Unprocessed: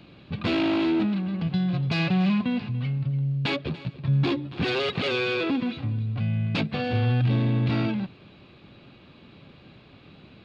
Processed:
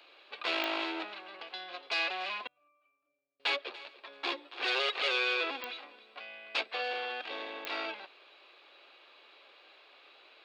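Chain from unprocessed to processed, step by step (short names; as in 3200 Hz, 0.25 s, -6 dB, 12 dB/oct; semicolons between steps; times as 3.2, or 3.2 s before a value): Bessel high-pass 720 Hz, order 8; 2.47–3.4 octave resonator D, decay 0.72 s; pops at 0.64/5.64/7.65, -19 dBFS; gain -1 dB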